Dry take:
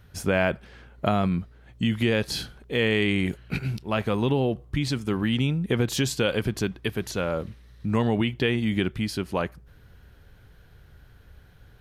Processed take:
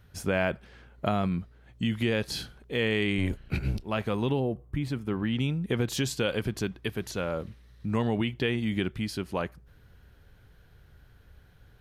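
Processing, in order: 3.18–3.85 s: octave divider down 1 oct, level +2 dB; 4.39–5.38 s: peaking EQ 2.8 kHz -> 11 kHz -12.5 dB 1.8 oct; trim -4 dB

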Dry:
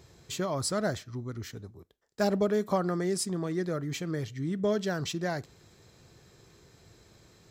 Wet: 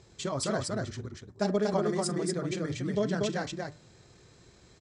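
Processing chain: steep low-pass 9.6 kHz 72 dB/octave; de-hum 149.8 Hz, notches 17; granular stretch 0.64×, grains 51 ms; multi-tap echo 41/237 ms -17.5/-3 dB

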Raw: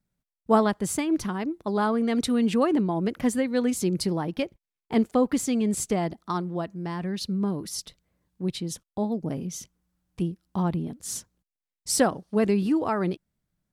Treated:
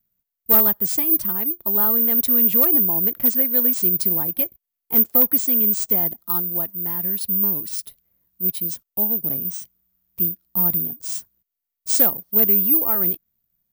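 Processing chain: in parallel at -8 dB: integer overflow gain 12.5 dB; on the sum: careless resampling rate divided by 3×, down none, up zero stuff; treble shelf 11 kHz +10 dB; trim -7.5 dB

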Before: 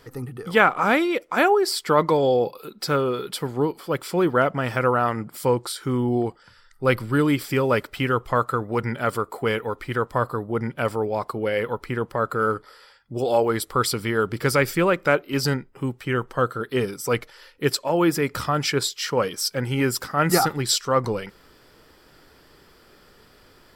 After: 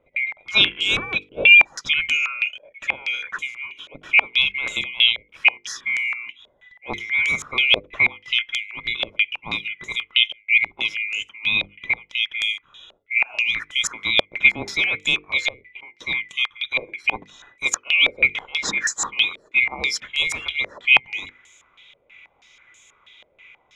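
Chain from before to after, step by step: split-band scrambler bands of 2 kHz; hum notches 50/100/150/200/250/300/350/400/450/500 Hz; step-sequenced low-pass 6.2 Hz 580–7300 Hz; trim -2.5 dB

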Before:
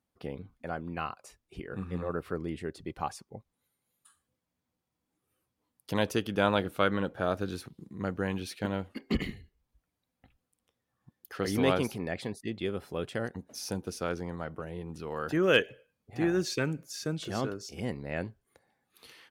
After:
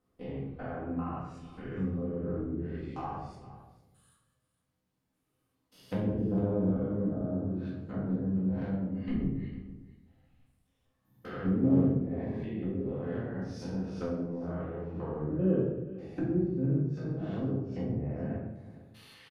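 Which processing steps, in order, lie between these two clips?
spectrogram pixelated in time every 200 ms; low-pass that closes with the level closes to 380 Hz, closed at -32 dBFS; delay 456 ms -17 dB; simulated room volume 210 m³, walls mixed, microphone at 2 m; trim -3.5 dB

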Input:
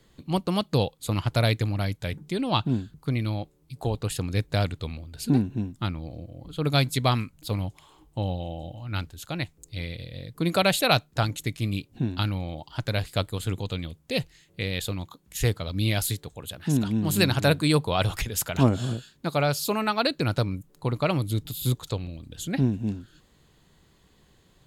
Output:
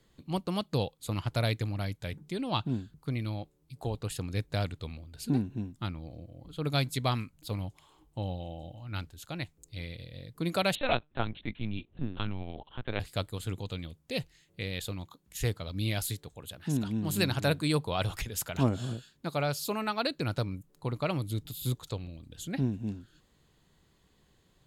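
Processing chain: 10.75–13.00 s: LPC vocoder at 8 kHz pitch kept; trim -6.5 dB

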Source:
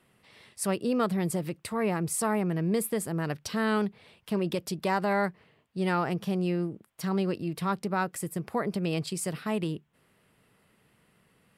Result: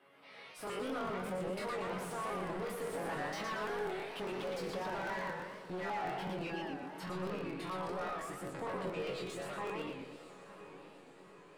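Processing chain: Doppler pass-by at 3.45 s, 18 m/s, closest 25 m; chord resonator F#2 fifth, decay 0.51 s; overdrive pedal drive 34 dB, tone 1.1 kHz, clips at -30.5 dBFS; reverb removal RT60 0.53 s; peak limiter -39.5 dBFS, peak gain reduction 7.5 dB; tone controls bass -5 dB, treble -3 dB; on a send: echo that smears into a reverb 960 ms, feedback 56%, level -14 dB; on the sum: crackling interface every 0.20 s, samples 1024, repeat; modulated delay 119 ms, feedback 51%, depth 190 cents, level -3.5 dB; trim +5 dB

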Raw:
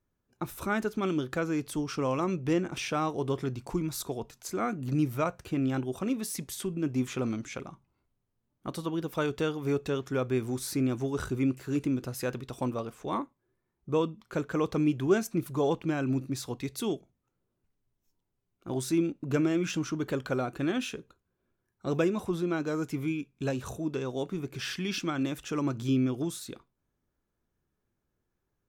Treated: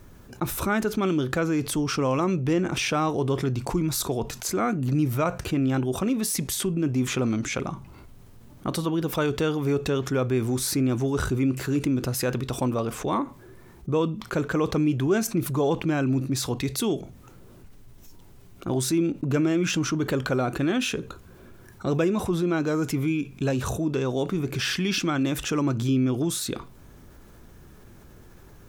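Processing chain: bass shelf 140 Hz +3.5 dB; level flattener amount 50%

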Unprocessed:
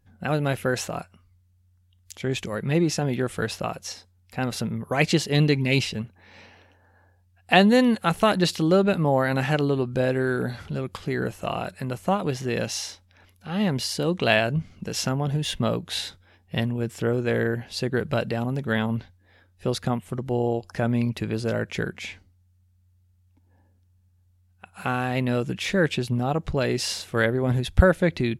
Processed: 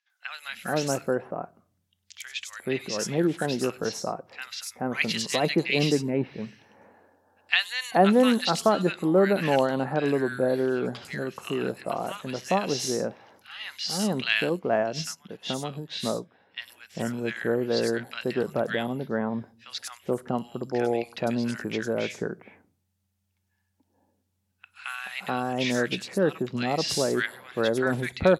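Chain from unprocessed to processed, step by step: high-pass 220 Hz 12 dB/octave; peaking EQ 5.7 kHz +3.5 dB 0.77 oct; three bands offset in time mids, highs, lows 100/430 ms, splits 1.4/5.5 kHz; on a send at -22.5 dB: reverberation RT60 0.55 s, pre-delay 4 ms; 14.49–16.60 s: on the sum: upward expansion 1.5:1, over -46 dBFS

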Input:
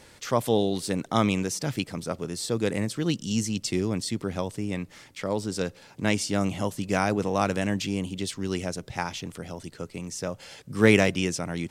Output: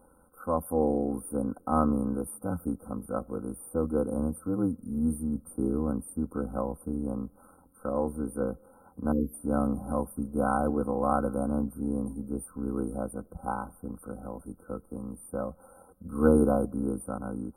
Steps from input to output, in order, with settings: brick-wall FIR band-stop 1.5–8.7 kHz; level rider gain up to 4 dB; granular stretch 1.5×, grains 23 ms; time-frequency box 9.12–9.34 s, 530–11000 Hz -27 dB; trim -4.5 dB

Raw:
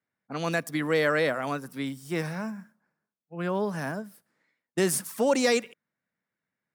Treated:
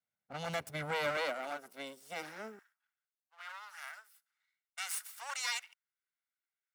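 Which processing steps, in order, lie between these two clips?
comb filter that takes the minimum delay 1.4 ms; high-pass 69 Hz 24 dB/octave, from 1.17 s 260 Hz, from 2.59 s 1.1 kHz; trim -8 dB

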